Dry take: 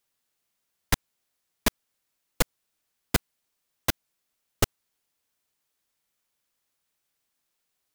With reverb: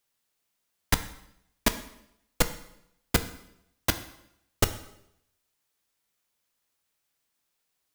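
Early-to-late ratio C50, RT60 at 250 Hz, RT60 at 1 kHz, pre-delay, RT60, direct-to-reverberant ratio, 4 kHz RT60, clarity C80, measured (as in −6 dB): 13.0 dB, 0.80 s, 0.75 s, 4 ms, 0.80 s, 9.0 dB, 0.70 s, 15.5 dB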